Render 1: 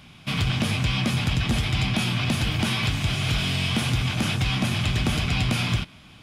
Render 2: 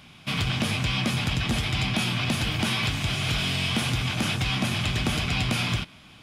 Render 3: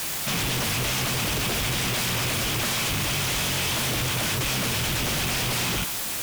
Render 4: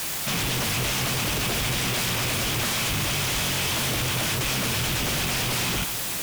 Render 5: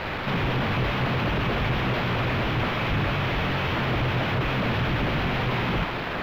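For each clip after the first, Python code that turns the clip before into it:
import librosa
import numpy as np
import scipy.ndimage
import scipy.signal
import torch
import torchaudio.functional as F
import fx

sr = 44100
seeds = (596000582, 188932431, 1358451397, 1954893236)

y1 = fx.low_shelf(x, sr, hz=180.0, db=-5.0)
y2 = fx.quant_dither(y1, sr, seeds[0], bits=6, dither='triangular')
y2 = fx.fold_sine(y2, sr, drive_db=12, ceiling_db=-14.5)
y2 = y2 * 10.0 ** (-8.0 / 20.0)
y3 = y2 + 10.0 ** (-13.5 / 20.0) * np.pad(y2, (int(455 * sr / 1000.0), 0))[:len(y2)]
y4 = fx.sample_hold(y3, sr, seeds[1], rate_hz=8900.0, jitter_pct=0)
y4 = fx.air_absorb(y4, sr, metres=470.0)
y4 = y4 * 10.0 ** (4.0 / 20.0)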